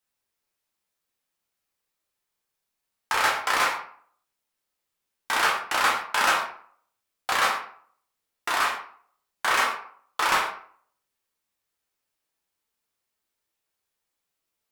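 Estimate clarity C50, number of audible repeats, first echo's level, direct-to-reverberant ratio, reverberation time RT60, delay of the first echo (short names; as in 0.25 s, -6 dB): 6.0 dB, none, none, -2.5 dB, 0.55 s, none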